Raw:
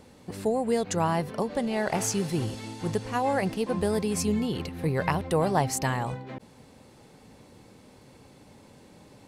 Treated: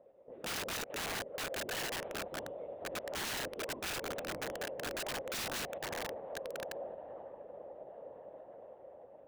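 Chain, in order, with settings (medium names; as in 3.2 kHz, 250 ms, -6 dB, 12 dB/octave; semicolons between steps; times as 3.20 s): tracing distortion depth 0.25 ms; bass shelf 180 Hz -3.5 dB; on a send: echo that smears into a reverb 1221 ms, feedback 54%, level -11 dB; on the sum: LPC vocoder at 8 kHz whisper; resonant low-pass 550 Hz, resonance Q 6; differentiator; integer overflow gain 43 dB; trim +9.5 dB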